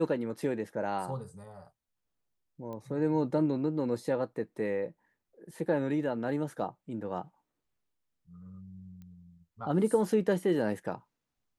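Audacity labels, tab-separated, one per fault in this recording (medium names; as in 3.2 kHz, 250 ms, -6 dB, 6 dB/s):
2.730000	2.730000	pop -30 dBFS
9.020000	9.020000	pop -38 dBFS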